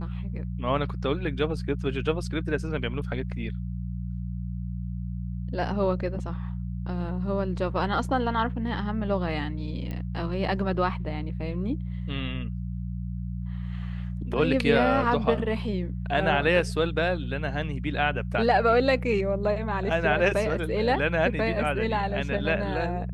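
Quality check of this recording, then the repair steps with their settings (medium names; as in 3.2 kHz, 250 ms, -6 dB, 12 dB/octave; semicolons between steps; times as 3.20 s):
hum 60 Hz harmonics 3 -32 dBFS
9.91 s: pop -23 dBFS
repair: de-click; de-hum 60 Hz, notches 3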